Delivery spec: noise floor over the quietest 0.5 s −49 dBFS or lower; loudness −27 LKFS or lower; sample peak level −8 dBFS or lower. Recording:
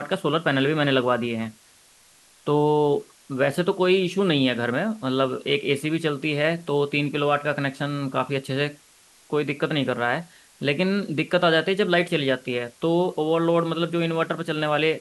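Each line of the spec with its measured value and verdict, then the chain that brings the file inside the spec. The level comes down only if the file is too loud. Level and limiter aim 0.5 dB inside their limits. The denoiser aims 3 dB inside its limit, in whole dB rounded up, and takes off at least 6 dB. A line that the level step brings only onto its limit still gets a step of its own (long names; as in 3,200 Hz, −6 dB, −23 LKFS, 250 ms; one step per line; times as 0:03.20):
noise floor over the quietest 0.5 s −55 dBFS: in spec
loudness −23.5 LKFS: out of spec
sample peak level −6.5 dBFS: out of spec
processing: level −4 dB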